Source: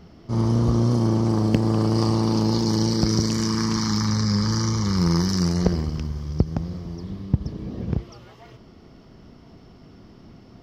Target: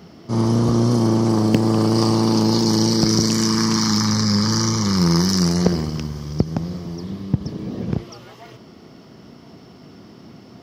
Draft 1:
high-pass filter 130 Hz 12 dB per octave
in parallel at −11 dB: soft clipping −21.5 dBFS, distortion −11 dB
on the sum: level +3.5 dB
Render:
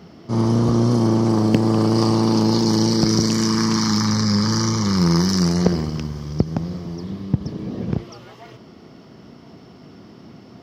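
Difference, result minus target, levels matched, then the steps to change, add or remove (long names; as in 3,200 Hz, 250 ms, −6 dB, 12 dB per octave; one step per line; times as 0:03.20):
8,000 Hz band −2.5 dB
add after high-pass filter: high-shelf EQ 6,400 Hz +6.5 dB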